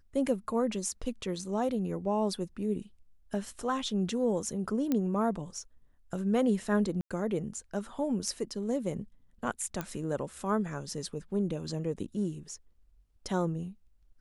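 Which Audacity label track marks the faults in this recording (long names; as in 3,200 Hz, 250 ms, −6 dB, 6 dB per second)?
4.920000	4.920000	click −16 dBFS
7.010000	7.110000	drop-out 96 ms
9.810000	9.810000	click −19 dBFS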